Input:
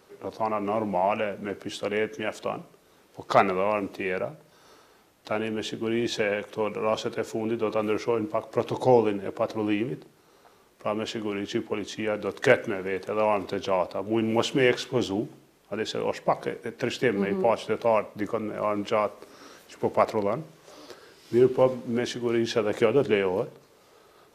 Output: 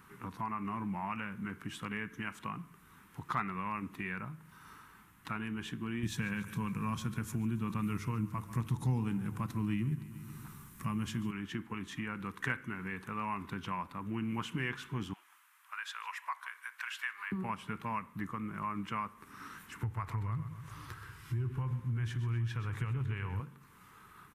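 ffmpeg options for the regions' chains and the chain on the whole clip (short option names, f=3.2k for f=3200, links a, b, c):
-filter_complex "[0:a]asettb=1/sr,asplit=3[a][b][c];[a]atrim=end=6.034[d];[b]atrim=start=6.03:end=11.31,asetpts=PTS-STARTPTS,afade=t=in:d=0.004:c=qsin,afade=t=out:st=5.276:d=0.004:c=qsin,bass=f=250:g=13,treble=f=4k:g=12,bandreject=f=50:t=h:w=6,bandreject=f=100:t=h:w=6,aecho=1:1:142|284|426|568|710:0.126|0.0743|0.0438|0.0259|0.0153,atrim=end_sample=232848[e];[c]atrim=start=11.306[f];[d][e]acrossfade=d=0.004:c1=hsin:c2=qsin[g];[g][f]acrossfade=d=0.004:c1=qsin:c2=hsin,asettb=1/sr,asplit=3[h][i][j];[h]atrim=end=15.134[k];[i]atrim=start=15.13:end=17.32,asetpts=PTS-STARTPTS,afade=t=in:d=0.004:c=qsin,afade=t=out:st=2.186:d=0.004:c=qsin,highpass=f=1k:w=0.5412,highpass=f=1k:w=1.3066,aecho=1:1:152:0.0891,atrim=end_sample=96579[l];[j]atrim=start=17.316[m];[k][l]acrossfade=d=0.004:c1=hsin:c2=qsin[n];[n][m]acrossfade=d=0.004:c1=qsin:c2=hsin,asettb=1/sr,asplit=3[o][p][q];[o]atrim=end=19.834[r];[p]atrim=start=19.83:end=23.4,asetpts=PTS-STARTPTS,afade=t=in:d=0.004:c=qsin,afade=t=out:st=3.566:d=0.004:c=qsin,lowshelf=f=150:t=q:w=3:g=9.5,acompressor=threshold=-24dB:ratio=2.5:attack=3.2:release=140:knee=1:detection=peak,aecho=1:1:128|256|384|512:0.266|0.117|0.0515|0.0227,atrim=end_sample=157437[s];[q]atrim=start=23.396[t];[r][s]acrossfade=d=0.004:c1=hsin:c2=qsin[u];[u][t]acrossfade=d=0.004:c1=qsin:c2=hsin,firequalizer=gain_entry='entry(190,0);entry(340,-14);entry(580,-28);entry(1000,-2);entry(1600,-2);entry(4600,-17);entry(9800,-4)':delay=0.05:min_phase=1,acompressor=threshold=-48dB:ratio=2,volume=6dB"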